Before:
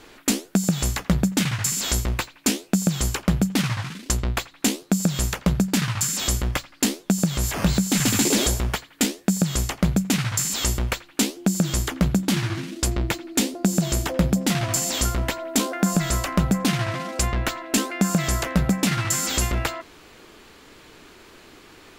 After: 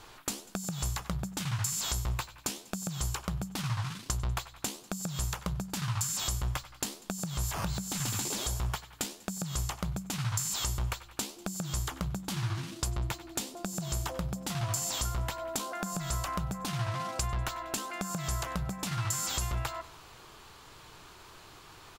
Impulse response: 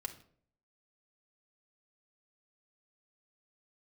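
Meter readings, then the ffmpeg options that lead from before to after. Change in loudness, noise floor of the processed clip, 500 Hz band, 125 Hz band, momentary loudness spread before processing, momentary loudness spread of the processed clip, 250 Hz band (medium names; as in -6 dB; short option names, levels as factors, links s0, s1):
-11.0 dB, -53 dBFS, -13.0 dB, -9.5 dB, 5 LU, 7 LU, -17.0 dB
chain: -filter_complex "[0:a]asplit=2[s0][s1];[s1]aecho=0:1:96|192|288:0.0708|0.034|0.0163[s2];[s0][s2]amix=inputs=2:normalize=0,acompressor=threshold=0.0447:ratio=6,equalizer=f=125:t=o:w=1:g=5,equalizer=f=250:t=o:w=1:g=-11,equalizer=f=500:t=o:w=1:g=-5,equalizer=f=1000:t=o:w=1:g=5,equalizer=f=2000:t=o:w=1:g=-6,volume=0.794"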